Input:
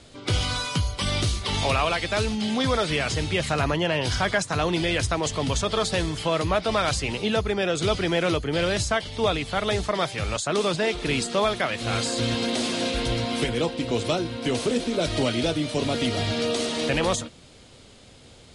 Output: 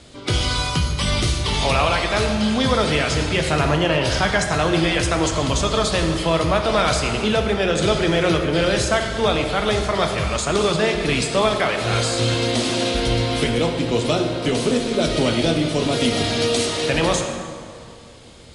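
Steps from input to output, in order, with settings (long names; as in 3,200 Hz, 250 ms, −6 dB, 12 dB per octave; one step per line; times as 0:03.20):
0:15.92–0:16.66: high-shelf EQ 6,000 Hz +7 dB
dense smooth reverb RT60 2.3 s, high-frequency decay 0.6×, DRR 3.5 dB
level +3.5 dB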